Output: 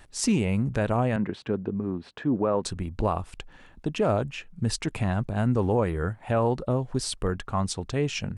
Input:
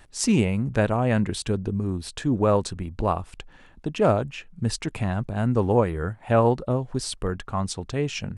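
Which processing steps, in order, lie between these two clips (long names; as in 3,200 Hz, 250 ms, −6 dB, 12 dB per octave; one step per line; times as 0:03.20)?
brickwall limiter −14.5 dBFS, peak gain reduction 7 dB
0:01.16–0:02.64: band-pass filter 170–2,000 Hz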